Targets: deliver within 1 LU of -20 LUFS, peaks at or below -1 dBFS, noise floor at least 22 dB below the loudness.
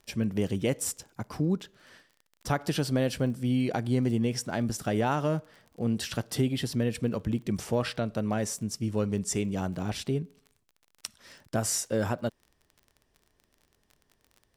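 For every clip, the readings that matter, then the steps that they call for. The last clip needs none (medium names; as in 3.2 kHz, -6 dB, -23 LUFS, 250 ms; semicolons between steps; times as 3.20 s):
tick rate 25 per s; loudness -30.0 LUFS; peak level -13.0 dBFS; loudness target -20.0 LUFS
-> de-click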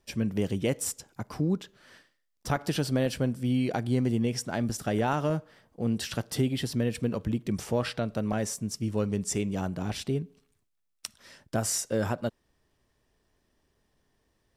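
tick rate 0 per s; loudness -30.0 LUFS; peak level -13.0 dBFS; loudness target -20.0 LUFS
-> trim +10 dB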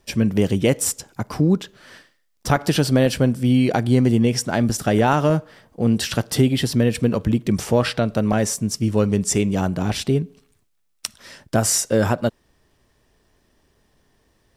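loudness -20.0 LUFS; peak level -3.0 dBFS; noise floor -65 dBFS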